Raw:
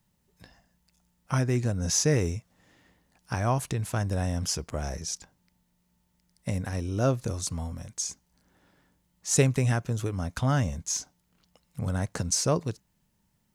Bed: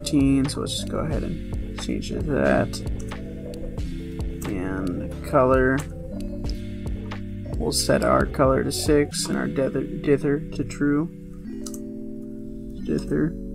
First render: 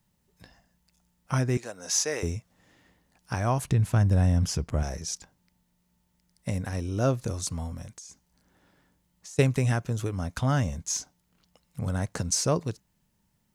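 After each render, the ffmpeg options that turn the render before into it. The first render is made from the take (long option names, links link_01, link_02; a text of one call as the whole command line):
ffmpeg -i in.wav -filter_complex "[0:a]asettb=1/sr,asplit=3[link_01][link_02][link_03];[link_01]atrim=end=1.574[link_04];[link_02]atrim=start=1.57:end=2.23,asetpts=PTS-STARTPTS,afade=type=in:duration=0.004:curve=qsin,afade=type=out:start_time=0.656:duration=0.004:curve=qsin,highpass=550[link_05];[link_03]atrim=start=2.226[link_06];[link_04][link_05]acrossfade=duration=0.004:curve1=hsin:curve2=qsin[link_07];[link_07][link_06]acrossfade=duration=0.004:curve1=qsin:curve2=hsin,asettb=1/sr,asplit=3[link_08][link_09][link_10];[link_08]atrim=end=3.644[link_11];[link_09]atrim=start=3.64:end=4.83,asetpts=PTS-STARTPTS,afade=type=in:duration=0.004:curve=qsin,afade=type=out:start_time=1.186:duration=0.004:curve=qsin,bass=frequency=250:gain=8,treble=frequency=4000:gain=-4[link_12];[link_10]atrim=start=4.826[link_13];[link_11][link_12]acrossfade=duration=0.004:curve1=hsin:curve2=qsin[link_14];[link_14][link_13]acrossfade=duration=0.004:curve1=qsin:curve2=hsin,asettb=1/sr,asplit=3[link_15][link_16][link_17];[link_15]atrim=end=7.904[link_18];[link_16]atrim=start=7.9:end=9.39,asetpts=PTS-STARTPTS,afade=type=in:duration=0.004:curve=qsin,afade=type=out:start_time=1.486:duration=0.004:curve=qsin,acompressor=threshold=-41dB:ratio=20:attack=3.2:release=140:knee=1:detection=peak[link_19];[link_17]atrim=start=9.386[link_20];[link_18][link_19]acrossfade=duration=0.004:curve1=hsin:curve2=qsin[link_21];[link_21][link_20]acrossfade=duration=0.004:curve1=qsin:curve2=hsin" out.wav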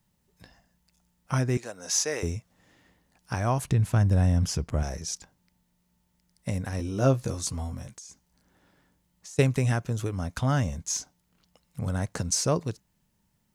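ffmpeg -i in.wav -filter_complex "[0:a]asettb=1/sr,asplit=3[link_01][link_02][link_03];[link_01]atrim=end=6.784[link_04];[link_02]atrim=start=6.78:end=7.96,asetpts=PTS-STARTPTS,afade=type=in:duration=0.004:curve=qsin,afade=type=out:start_time=1.176:duration=0.004:curve=qsin,asplit=2[link_05][link_06];[link_06]adelay=15,volume=-5.5dB[link_07];[link_05][link_07]amix=inputs=2:normalize=0,atrim=end_sample=52038[link_08];[link_03]atrim=start=7.956[link_09];[link_04][link_08]acrossfade=duration=0.004:curve1=hsin:curve2=qsin[link_10];[link_10][link_09]acrossfade=duration=0.004:curve1=qsin:curve2=hsin" out.wav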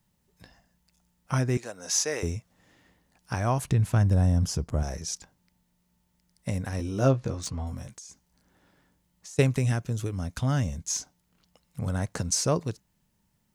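ffmpeg -i in.wav -filter_complex "[0:a]asettb=1/sr,asplit=3[link_01][link_02][link_03];[link_01]atrim=end=4.134[link_04];[link_02]atrim=start=4.13:end=4.88,asetpts=PTS-STARTPTS,afade=type=in:duration=0.004:curve=qsin,afade=type=out:start_time=0.746:duration=0.004:curve=qsin,equalizer=frequency=2300:width_type=o:width=1.3:gain=-6.5[link_05];[link_03]atrim=start=4.876[link_06];[link_04][link_05]acrossfade=duration=0.004:curve1=hsin:curve2=qsin[link_07];[link_07][link_06]acrossfade=duration=0.004:curve1=qsin:curve2=hsin,asettb=1/sr,asplit=3[link_08][link_09][link_10];[link_08]atrim=end=7.084[link_11];[link_09]atrim=start=7.08:end=7.67,asetpts=PTS-STARTPTS,afade=type=in:duration=0.004:curve=qsin,afade=type=out:start_time=0.586:duration=0.004:curve=qsin,adynamicsmooth=sensitivity=4:basefreq=3600[link_12];[link_10]atrim=start=7.666[link_13];[link_11][link_12]acrossfade=duration=0.004:curve1=hsin:curve2=qsin[link_14];[link_14][link_13]acrossfade=duration=0.004:curve1=qsin:curve2=hsin,asettb=1/sr,asplit=3[link_15][link_16][link_17];[link_15]atrim=end=9.584[link_18];[link_16]atrim=start=9.58:end=10.89,asetpts=PTS-STARTPTS,afade=type=in:duration=0.004:curve=qsin,afade=type=out:start_time=1.306:duration=0.004:curve=qsin,equalizer=frequency=970:width=0.59:gain=-5[link_19];[link_17]atrim=start=10.886[link_20];[link_18][link_19]acrossfade=duration=0.004:curve1=hsin:curve2=qsin[link_21];[link_21][link_20]acrossfade=duration=0.004:curve1=qsin:curve2=hsin" out.wav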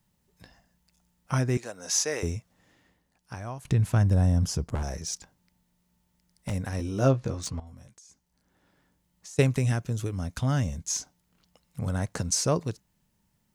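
ffmpeg -i in.wav -filter_complex "[0:a]asettb=1/sr,asplit=3[link_01][link_02][link_03];[link_01]atrim=end=4.754[link_04];[link_02]atrim=start=4.75:end=6.53,asetpts=PTS-STARTPTS,afade=type=in:duration=0.004:curve=qsin,afade=type=out:start_time=1.776:duration=0.004:curve=qsin,aeval=exprs='0.0631*(abs(mod(val(0)/0.0631+3,4)-2)-1)':channel_layout=same[link_05];[link_03]atrim=start=6.526[link_06];[link_04][link_05]acrossfade=duration=0.004:curve1=hsin:curve2=qsin[link_07];[link_07][link_06]acrossfade=duration=0.004:curve1=qsin:curve2=hsin,asplit=3[link_08][link_09][link_10];[link_08]atrim=end=3.65,asetpts=PTS-STARTPTS,afade=type=out:start_time=2.35:duration=1.3:silence=0.177828[link_11];[link_09]atrim=start=3.65:end=7.6,asetpts=PTS-STARTPTS,afade=type=in:duration=0.004:curve=hsin:silence=0.177828,afade=type=out:start_time=3.946:duration=0.004:curve=hsin:silence=0.188365[link_12];[link_10]atrim=start=7.6,asetpts=PTS-STARTPTS,afade=type=in:duration=1.76:silence=0.188365[link_13];[link_11][link_12][link_13]concat=n=3:v=0:a=1" out.wav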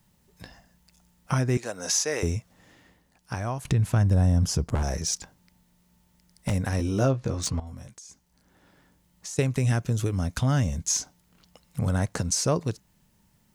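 ffmpeg -i in.wav -filter_complex "[0:a]asplit=2[link_01][link_02];[link_02]acompressor=threshold=-33dB:ratio=6,volume=2.5dB[link_03];[link_01][link_03]amix=inputs=2:normalize=0,alimiter=limit=-13dB:level=0:latency=1:release=357" out.wav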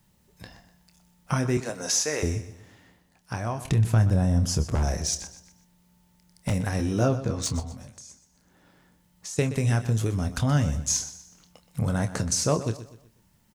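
ffmpeg -i in.wav -filter_complex "[0:a]asplit=2[link_01][link_02];[link_02]adelay=27,volume=-10dB[link_03];[link_01][link_03]amix=inputs=2:normalize=0,aecho=1:1:124|248|372|496:0.2|0.0758|0.0288|0.0109" out.wav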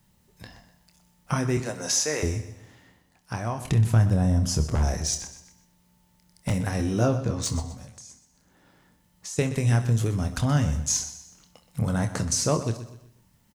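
ffmpeg -i in.wav -filter_complex "[0:a]asplit=2[link_01][link_02];[link_02]adelay=26,volume=-12dB[link_03];[link_01][link_03]amix=inputs=2:normalize=0,aecho=1:1:66|132|198|264|330|396:0.133|0.08|0.048|0.0288|0.0173|0.0104" out.wav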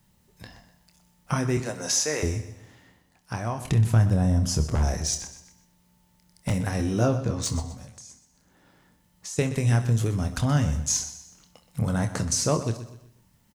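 ffmpeg -i in.wav -af anull out.wav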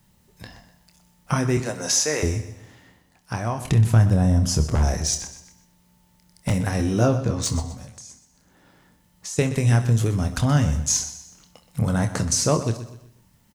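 ffmpeg -i in.wav -af "volume=3.5dB" out.wav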